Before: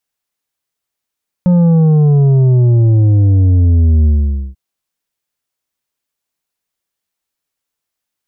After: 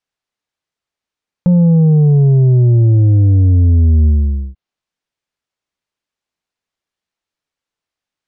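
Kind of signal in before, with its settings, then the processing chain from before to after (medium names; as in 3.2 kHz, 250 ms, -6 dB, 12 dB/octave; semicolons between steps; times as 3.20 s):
sub drop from 180 Hz, over 3.09 s, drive 7 dB, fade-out 0.49 s, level -7 dB
low-pass that closes with the level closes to 570 Hz, closed at -13 dBFS; distance through air 87 m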